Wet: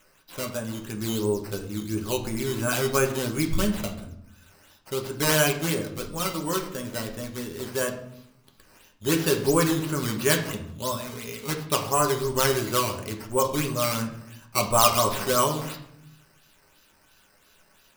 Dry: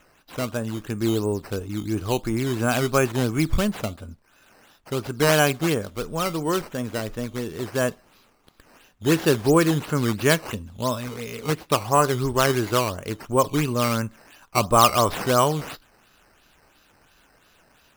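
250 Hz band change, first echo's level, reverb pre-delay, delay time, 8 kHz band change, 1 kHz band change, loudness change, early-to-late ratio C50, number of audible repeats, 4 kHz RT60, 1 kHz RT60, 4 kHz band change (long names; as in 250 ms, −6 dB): −4.0 dB, no echo audible, 5 ms, no echo audible, +2.0 dB, −3.5 dB, −2.5 dB, 9.5 dB, no echo audible, 0.50 s, 0.75 s, −0.5 dB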